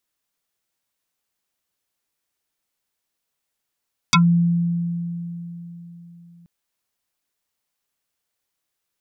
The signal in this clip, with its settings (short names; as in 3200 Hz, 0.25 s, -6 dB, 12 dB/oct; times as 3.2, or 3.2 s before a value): FM tone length 2.33 s, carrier 171 Hz, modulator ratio 6.96, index 6.8, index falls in 0.11 s exponential, decay 3.87 s, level -10 dB